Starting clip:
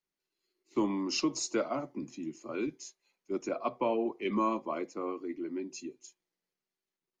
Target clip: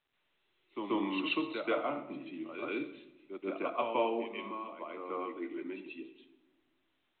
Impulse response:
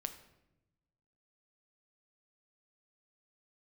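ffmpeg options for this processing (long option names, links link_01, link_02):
-filter_complex "[0:a]aemphasis=mode=production:type=riaa,asettb=1/sr,asplit=3[link_01][link_02][link_03];[link_01]atrim=end=4.184[link_04];[link_02]atrim=start=4.18:end=4.97,asetpts=PTS-STARTPTS,afade=type=in:duration=0.004:curve=qsin,afade=type=out:start_time=0.786:duration=0.004:curve=qsin,acompressor=threshold=-43dB:ratio=3[link_05];[link_03]atrim=start=4.966[link_06];[link_04][link_05]acrossfade=duration=0.004:curve1=hsin:curve2=qsin[link_07];[link_07][link_06]acrossfade=duration=0.004:curve1=qsin:curve2=hsin,asplit=2[link_08][link_09];[1:a]atrim=start_sample=2205,adelay=134[link_10];[link_09][link_10]afir=irnorm=-1:irlink=0,volume=8.5dB[link_11];[link_08][link_11]amix=inputs=2:normalize=0,volume=-6dB" -ar 8000 -c:a pcm_mulaw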